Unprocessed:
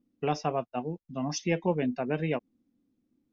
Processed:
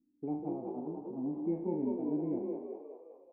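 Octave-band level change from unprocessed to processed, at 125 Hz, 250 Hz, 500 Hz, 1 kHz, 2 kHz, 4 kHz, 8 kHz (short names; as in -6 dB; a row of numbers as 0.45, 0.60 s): -11.0 dB, -1.5 dB, -6.5 dB, -13.5 dB, under -35 dB, under -40 dB, n/a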